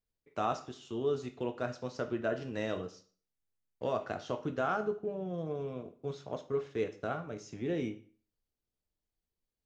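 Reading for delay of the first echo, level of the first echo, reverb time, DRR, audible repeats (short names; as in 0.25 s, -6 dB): none, none, 0.45 s, 7.0 dB, none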